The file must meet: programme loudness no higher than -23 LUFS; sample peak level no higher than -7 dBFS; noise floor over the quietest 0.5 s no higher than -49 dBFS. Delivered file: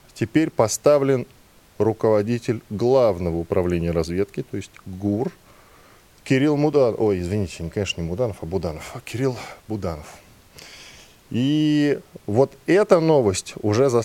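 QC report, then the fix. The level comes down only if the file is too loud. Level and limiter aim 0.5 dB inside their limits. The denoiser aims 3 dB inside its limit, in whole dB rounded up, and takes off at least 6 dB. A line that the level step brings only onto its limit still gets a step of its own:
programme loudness -21.5 LUFS: fail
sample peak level -2.0 dBFS: fail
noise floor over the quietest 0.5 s -52 dBFS: pass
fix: trim -2 dB; peak limiter -7.5 dBFS

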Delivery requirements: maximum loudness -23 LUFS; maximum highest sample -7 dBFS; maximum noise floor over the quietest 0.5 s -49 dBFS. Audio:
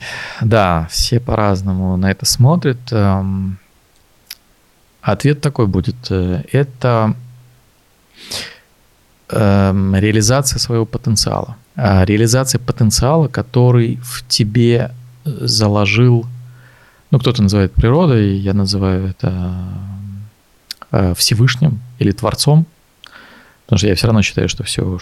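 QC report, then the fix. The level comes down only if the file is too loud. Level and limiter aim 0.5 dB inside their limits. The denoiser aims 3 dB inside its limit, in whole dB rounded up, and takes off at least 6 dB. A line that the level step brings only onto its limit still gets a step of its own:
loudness -14.5 LUFS: fail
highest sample -2.0 dBFS: fail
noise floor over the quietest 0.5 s -53 dBFS: pass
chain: trim -9 dB

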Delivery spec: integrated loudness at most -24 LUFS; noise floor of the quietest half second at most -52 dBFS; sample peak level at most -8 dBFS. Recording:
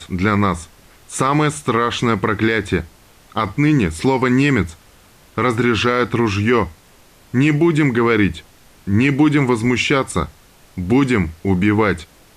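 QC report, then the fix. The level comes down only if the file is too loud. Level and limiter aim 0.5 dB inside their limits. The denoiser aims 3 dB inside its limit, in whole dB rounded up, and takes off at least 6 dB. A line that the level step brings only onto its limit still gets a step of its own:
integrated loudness -17.0 LUFS: fail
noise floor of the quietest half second -48 dBFS: fail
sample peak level -5.5 dBFS: fail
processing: trim -7.5 dB

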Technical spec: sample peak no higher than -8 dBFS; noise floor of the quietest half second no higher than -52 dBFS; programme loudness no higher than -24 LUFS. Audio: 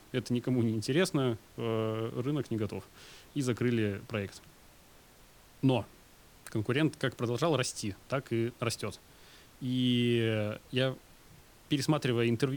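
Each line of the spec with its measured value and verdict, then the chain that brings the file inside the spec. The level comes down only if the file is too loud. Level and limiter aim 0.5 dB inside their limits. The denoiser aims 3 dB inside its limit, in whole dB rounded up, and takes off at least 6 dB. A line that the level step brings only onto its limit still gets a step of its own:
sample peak -15.5 dBFS: pass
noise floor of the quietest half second -58 dBFS: pass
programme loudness -32.0 LUFS: pass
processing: none needed

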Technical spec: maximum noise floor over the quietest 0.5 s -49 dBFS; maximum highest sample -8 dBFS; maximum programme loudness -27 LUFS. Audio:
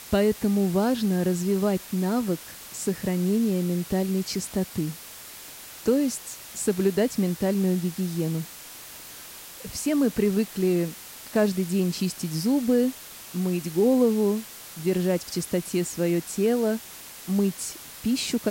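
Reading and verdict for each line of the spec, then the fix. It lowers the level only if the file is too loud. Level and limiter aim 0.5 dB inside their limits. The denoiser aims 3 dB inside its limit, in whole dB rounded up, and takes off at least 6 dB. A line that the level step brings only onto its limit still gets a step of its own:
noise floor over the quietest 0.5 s -43 dBFS: fail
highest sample -10.5 dBFS: pass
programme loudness -25.5 LUFS: fail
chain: noise reduction 7 dB, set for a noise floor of -43 dBFS; trim -2 dB

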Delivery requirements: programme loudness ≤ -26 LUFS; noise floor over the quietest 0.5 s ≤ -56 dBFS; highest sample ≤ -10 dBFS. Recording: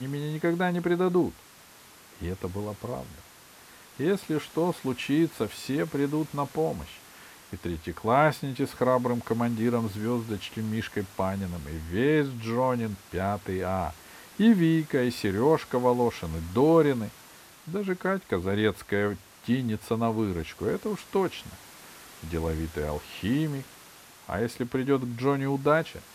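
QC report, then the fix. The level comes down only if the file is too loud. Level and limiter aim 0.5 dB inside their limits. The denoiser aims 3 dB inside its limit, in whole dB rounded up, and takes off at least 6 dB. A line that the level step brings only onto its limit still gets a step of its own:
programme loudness -28.0 LUFS: pass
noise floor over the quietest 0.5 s -52 dBFS: fail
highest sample -8.5 dBFS: fail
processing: noise reduction 7 dB, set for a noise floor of -52 dBFS; peak limiter -10.5 dBFS

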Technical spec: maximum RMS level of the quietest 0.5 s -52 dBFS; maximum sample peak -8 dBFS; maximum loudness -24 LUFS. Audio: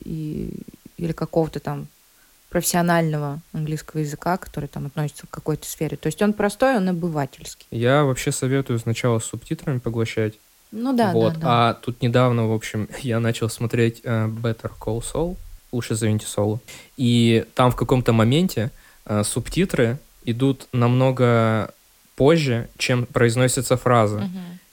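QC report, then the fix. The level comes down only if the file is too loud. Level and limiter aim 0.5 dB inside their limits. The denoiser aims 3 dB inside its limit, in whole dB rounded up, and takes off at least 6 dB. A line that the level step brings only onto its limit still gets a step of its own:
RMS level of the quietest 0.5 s -55 dBFS: pass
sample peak -4.5 dBFS: fail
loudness -22.0 LUFS: fail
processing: trim -2.5 dB; peak limiter -8.5 dBFS

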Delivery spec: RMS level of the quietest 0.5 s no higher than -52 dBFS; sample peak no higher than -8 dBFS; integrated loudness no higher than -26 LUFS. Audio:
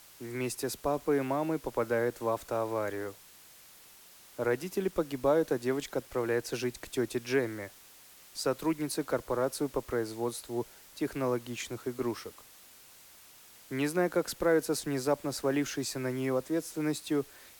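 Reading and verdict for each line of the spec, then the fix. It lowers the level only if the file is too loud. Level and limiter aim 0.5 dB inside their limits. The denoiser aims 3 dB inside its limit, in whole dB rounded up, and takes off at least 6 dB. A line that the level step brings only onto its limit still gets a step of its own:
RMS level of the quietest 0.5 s -55 dBFS: pass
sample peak -15.5 dBFS: pass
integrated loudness -32.5 LUFS: pass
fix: none needed

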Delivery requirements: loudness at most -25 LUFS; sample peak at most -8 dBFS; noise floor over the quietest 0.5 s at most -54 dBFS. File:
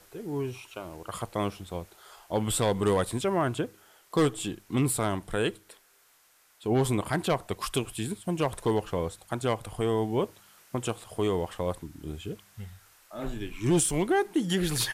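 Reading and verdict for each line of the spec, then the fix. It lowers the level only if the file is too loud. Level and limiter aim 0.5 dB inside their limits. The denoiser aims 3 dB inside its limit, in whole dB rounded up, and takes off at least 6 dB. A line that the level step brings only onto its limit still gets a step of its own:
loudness -29.5 LUFS: pass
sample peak -16.0 dBFS: pass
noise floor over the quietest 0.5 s -63 dBFS: pass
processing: none needed

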